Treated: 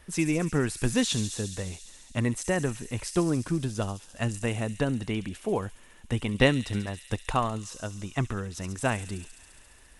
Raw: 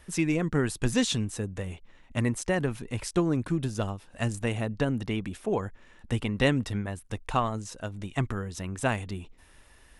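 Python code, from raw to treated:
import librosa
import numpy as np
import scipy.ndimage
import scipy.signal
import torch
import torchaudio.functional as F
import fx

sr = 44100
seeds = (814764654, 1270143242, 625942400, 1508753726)

y = fx.transient(x, sr, attack_db=5, sustain_db=-2, at=(6.34, 7.33))
y = fx.echo_wet_highpass(y, sr, ms=69, feedback_pct=84, hz=5200.0, wet_db=-5)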